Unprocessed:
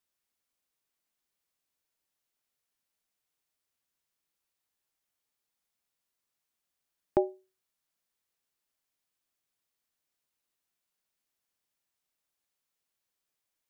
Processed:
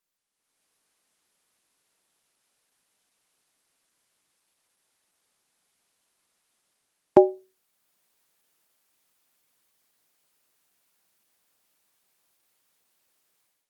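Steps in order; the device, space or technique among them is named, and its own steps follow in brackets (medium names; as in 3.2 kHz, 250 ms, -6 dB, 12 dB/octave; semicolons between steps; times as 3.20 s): video call (high-pass 130 Hz 12 dB/octave; level rider gain up to 14 dB; trim +1 dB; Opus 20 kbps 48 kHz)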